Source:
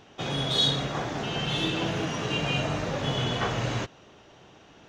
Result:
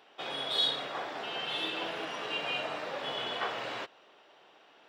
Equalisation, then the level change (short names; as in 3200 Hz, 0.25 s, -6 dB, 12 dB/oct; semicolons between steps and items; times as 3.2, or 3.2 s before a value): HPF 510 Hz 12 dB/oct; bell 6400 Hz -15 dB 0.37 oct; -3.5 dB